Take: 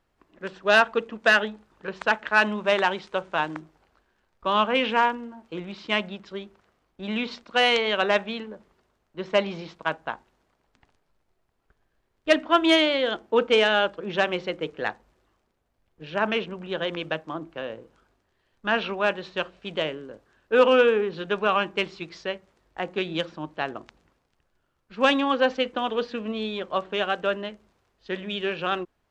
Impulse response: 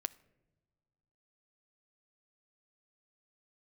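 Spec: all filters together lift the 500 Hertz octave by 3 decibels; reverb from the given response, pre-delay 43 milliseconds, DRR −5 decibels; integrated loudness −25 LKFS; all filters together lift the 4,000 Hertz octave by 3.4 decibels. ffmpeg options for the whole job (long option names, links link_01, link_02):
-filter_complex "[0:a]equalizer=frequency=500:width_type=o:gain=3.5,equalizer=frequency=4000:width_type=o:gain=5,asplit=2[link_01][link_02];[1:a]atrim=start_sample=2205,adelay=43[link_03];[link_02][link_03]afir=irnorm=-1:irlink=0,volume=6dB[link_04];[link_01][link_04]amix=inputs=2:normalize=0,volume=-8.5dB"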